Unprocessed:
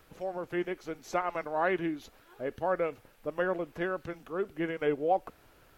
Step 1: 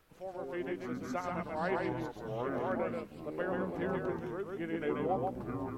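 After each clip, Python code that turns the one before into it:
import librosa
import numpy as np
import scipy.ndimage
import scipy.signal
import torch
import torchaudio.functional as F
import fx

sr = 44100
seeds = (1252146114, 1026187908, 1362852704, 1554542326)

y = x + 10.0 ** (-3.0 / 20.0) * np.pad(x, (int(134 * sr / 1000.0), 0))[:len(x)]
y = fx.echo_pitch(y, sr, ms=95, semitones=-6, count=3, db_per_echo=-3.0)
y = y * librosa.db_to_amplitude(-7.5)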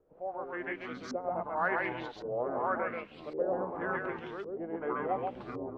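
y = fx.low_shelf(x, sr, hz=380.0, db=-10.5)
y = fx.filter_lfo_lowpass(y, sr, shape='saw_up', hz=0.9, low_hz=430.0, high_hz=4900.0, q=2.6)
y = y * librosa.db_to_amplitude(2.5)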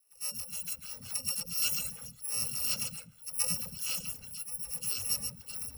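y = fx.bit_reversed(x, sr, seeds[0], block=128)
y = fx.dispersion(y, sr, late='lows', ms=143.0, hz=340.0)
y = fx.dereverb_blind(y, sr, rt60_s=1.2)
y = y * librosa.db_to_amplitude(1.0)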